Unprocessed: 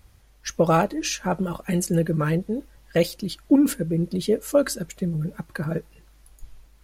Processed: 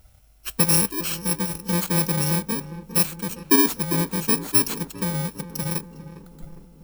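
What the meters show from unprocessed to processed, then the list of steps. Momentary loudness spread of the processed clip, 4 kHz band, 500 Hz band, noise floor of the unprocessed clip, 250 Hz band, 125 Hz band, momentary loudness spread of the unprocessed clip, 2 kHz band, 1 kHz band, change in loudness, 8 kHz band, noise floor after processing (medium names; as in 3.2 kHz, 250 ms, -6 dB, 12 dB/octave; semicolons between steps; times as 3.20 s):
13 LU, +5.5 dB, -6.5 dB, -54 dBFS, -2.5 dB, -1.0 dB, 12 LU, +2.5 dB, -2.0 dB, +2.5 dB, +8.5 dB, -54 dBFS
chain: bit-reversed sample order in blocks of 64 samples; filtered feedback delay 405 ms, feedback 63%, low-pass 1.2 kHz, level -12.5 dB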